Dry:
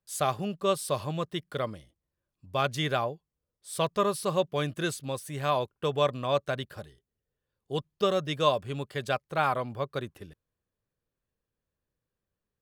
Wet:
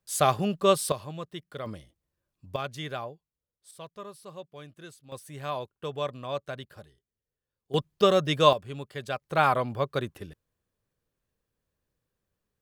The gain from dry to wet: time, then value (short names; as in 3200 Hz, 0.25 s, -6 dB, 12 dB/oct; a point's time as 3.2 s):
+5 dB
from 0.92 s -6 dB
from 1.66 s +2 dB
from 2.56 s -7 dB
from 3.71 s -16 dB
from 5.12 s -6 dB
from 7.74 s +5 dB
from 8.53 s -3.5 dB
from 9.22 s +4 dB